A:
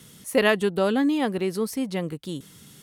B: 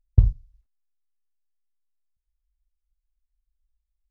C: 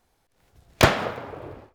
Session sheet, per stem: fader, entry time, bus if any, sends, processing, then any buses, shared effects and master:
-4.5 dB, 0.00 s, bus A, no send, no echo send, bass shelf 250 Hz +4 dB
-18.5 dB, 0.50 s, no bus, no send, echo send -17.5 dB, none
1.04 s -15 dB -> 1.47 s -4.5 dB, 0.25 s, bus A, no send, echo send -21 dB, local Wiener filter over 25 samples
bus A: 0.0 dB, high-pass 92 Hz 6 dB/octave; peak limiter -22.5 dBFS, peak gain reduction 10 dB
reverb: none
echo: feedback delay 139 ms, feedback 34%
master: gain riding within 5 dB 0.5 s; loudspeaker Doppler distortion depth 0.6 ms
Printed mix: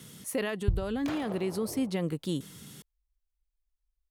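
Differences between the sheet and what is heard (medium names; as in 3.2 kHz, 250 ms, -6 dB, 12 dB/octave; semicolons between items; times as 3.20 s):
stem B -18.5 dB -> -8.5 dB; master: missing loudspeaker Doppler distortion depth 0.6 ms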